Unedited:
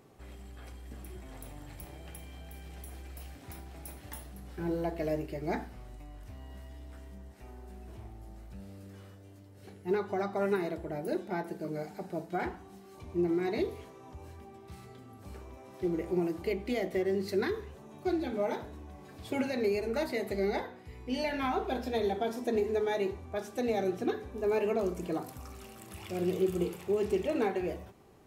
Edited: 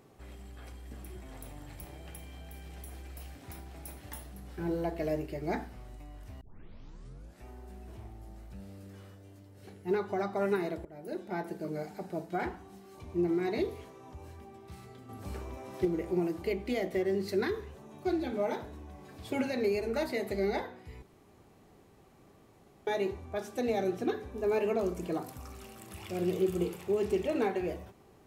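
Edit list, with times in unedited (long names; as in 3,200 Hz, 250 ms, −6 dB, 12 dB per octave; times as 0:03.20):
0:06.41: tape start 1.04 s
0:10.85–0:11.44: fade in, from −18.5 dB
0:15.09–0:15.85: clip gain +6 dB
0:21.02–0:22.87: fill with room tone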